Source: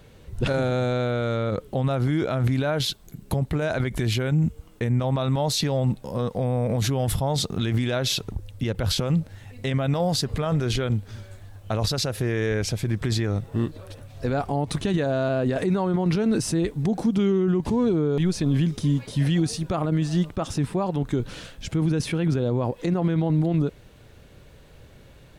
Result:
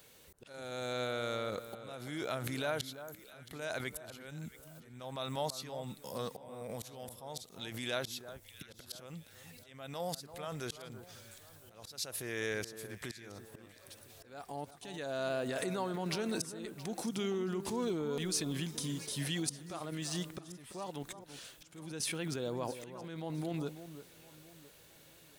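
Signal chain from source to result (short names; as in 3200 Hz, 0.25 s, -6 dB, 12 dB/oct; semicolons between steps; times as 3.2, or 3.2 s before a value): RIAA curve recording; auto swell 0.574 s; echo with dull and thin repeats by turns 0.336 s, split 1500 Hz, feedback 58%, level -11.5 dB; gain -8.5 dB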